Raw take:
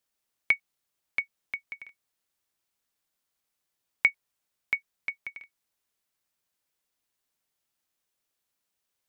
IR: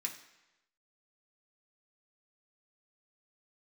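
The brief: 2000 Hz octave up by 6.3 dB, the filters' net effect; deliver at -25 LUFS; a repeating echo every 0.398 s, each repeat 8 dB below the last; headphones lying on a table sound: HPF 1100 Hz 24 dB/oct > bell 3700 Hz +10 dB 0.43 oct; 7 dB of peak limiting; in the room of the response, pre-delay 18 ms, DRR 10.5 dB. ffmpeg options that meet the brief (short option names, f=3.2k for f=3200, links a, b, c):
-filter_complex "[0:a]equalizer=f=2k:t=o:g=6,alimiter=limit=-10.5dB:level=0:latency=1,aecho=1:1:398|796|1194|1592|1990:0.398|0.159|0.0637|0.0255|0.0102,asplit=2[a][b];[1:a]atrim=start_sample=2205,adelay=18[c];[b][c]afir=irnorm=-1:irlink=0,volume=-10.5dB[d];[a][d]amix=inputs=2:normalize=0,highpass=f=1.1k:w=0.5412,highpass=f=1.1k:w=1.3066,equalizer=f=3.7k:t=o:w=0.43:g=10,volume=2dB"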